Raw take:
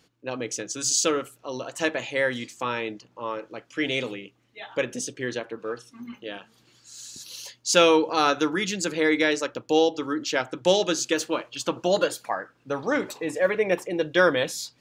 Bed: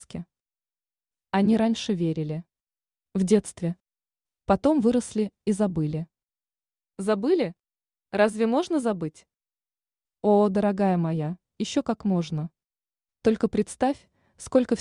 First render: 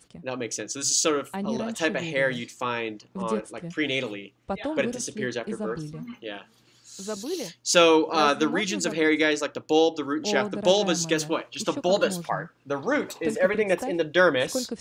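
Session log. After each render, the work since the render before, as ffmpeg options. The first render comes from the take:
-filter_complex "[1:a]volume=0.335[s0];[0:a][s0]amix=inputs=2:normalize=0"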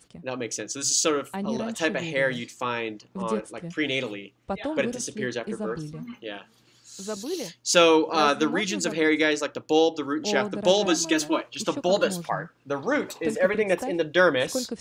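-filter_complex "[0:a]asettb=1/sr,asplit=3[s0][s1][s2];[s0]atrim=end=10.854[s3];[s1]atrim=start=10.85:end=11.41,asetpts=PTS-STARTPTS,afade=t=in:d=0.004:c=qsin,afade=t=out:st=0.556:d=0.004:c=qsin,aecho=1:1:3.1:0.72,atrim=end_sample=24696[s4];[s2]atrim=start=11.406[s5];[s3][s4]acrossfade=d=0.004:c1=hsin:c2=qsin[s6];[s6][s5]acrossfade=d=0.004:c1=qsin:c2=hsin"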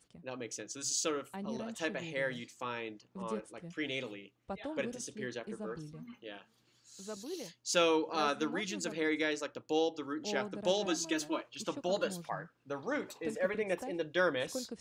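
-af "volume=0.282"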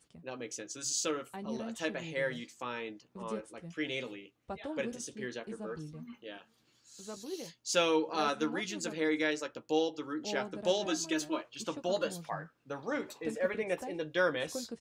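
-filter_complex "[0:a]asplit=2[s0][s1];[s1]adelay=13,volume=0.355[s2];[s0][s2]amix=inputs=2:normalize=0"

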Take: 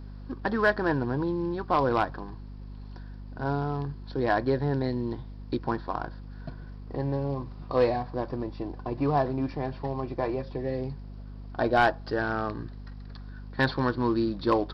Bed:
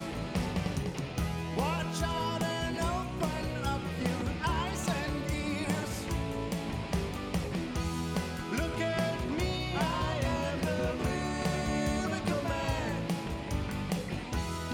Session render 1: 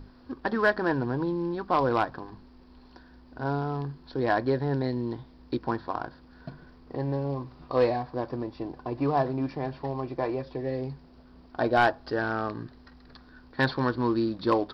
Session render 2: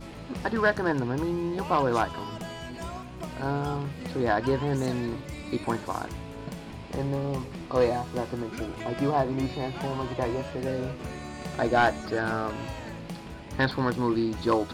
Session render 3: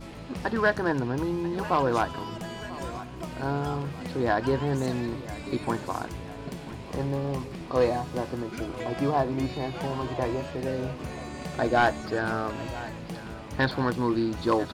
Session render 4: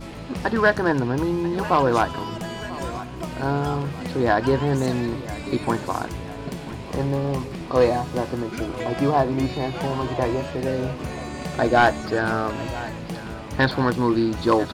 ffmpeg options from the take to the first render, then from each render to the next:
-af "bandreject=f=50:t=h:w=6,bandreject=f=100:t=h:w=6,bandreject=f=150:t=h:w=6,bandreject=f=200:t=h:w=6"
-filter_complex "[1:a]volume=0.531[s0];[0:a][s0]amix=inputs=2:normalize=0"
-af "aecho=1:1:991|1982|2973|3964|4955:0.141|0.0777|0.0427|0.0235|0.0129"
-af "volume=1.88"

